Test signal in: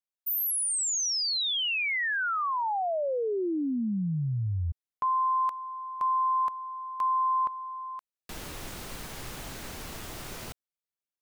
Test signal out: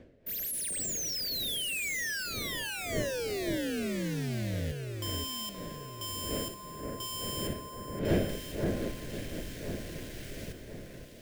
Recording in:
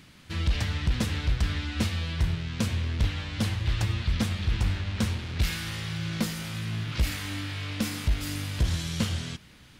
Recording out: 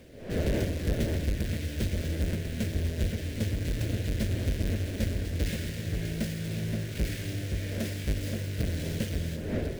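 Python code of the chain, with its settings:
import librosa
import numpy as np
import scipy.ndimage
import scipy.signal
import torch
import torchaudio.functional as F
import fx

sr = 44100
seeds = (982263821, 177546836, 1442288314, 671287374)

p1 = fx.halfwave_hold(x, sr)
p2 = fx.dmg_wind(p1, sr, seeds[0], corner_hz=570.0, level_db=-32.0)
p3 = fx.band_shelf(p2, sr, hz=1000.0, db=-16.0, octaves=1.0)
p4 = p3 + fx.echo_alternate(p3, sr, ms=524, hz=2100.0, feedback_pct=61, wet_db=-4.0, dry=0)
y = p4 * librosa.db_to_amplitude(-8.5)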